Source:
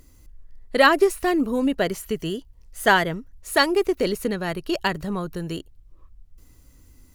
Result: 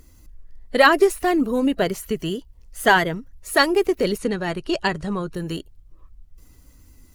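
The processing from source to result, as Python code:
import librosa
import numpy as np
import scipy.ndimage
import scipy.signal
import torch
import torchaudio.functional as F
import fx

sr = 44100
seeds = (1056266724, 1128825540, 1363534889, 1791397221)

y = fx.spec_quant(x, sr, step_db=15)
y = fx.steep_lowpass(y, sr, hz=9900.0, slope=36, at=(4.18, 5.34))
y = y * librosa.db_to_amplitude(2.0)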